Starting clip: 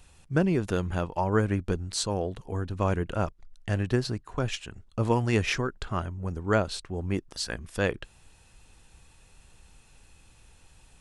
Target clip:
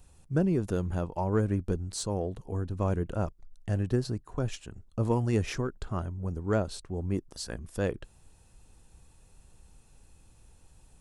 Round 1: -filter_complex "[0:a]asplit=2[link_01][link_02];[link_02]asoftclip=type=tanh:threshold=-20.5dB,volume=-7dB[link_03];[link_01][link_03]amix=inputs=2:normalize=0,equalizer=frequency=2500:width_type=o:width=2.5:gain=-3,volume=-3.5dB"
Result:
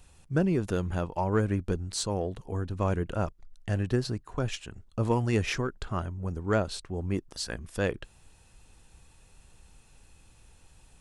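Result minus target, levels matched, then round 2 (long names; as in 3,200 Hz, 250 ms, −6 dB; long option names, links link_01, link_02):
2,000 Hz band +5.0 dB
-filter_complex "[0:a]asplit=2[link_01][link_02];[link_02]asoftclip=type=tanh:threshold=-20.5dB,volume=-7dB[link_03];[link_01][link_03]amix=inputs=2:normalize=0,equalizer=frequency=2500:width_type=o:width=2.5:gain=-10,volume=-3.5dB"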